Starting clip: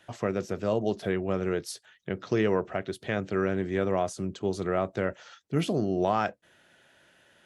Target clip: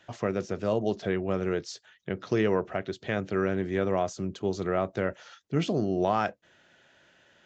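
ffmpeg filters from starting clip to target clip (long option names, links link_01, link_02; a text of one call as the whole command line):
ffmpeg -i in.wav -af "aresample=16000,aresample=44100" out.wav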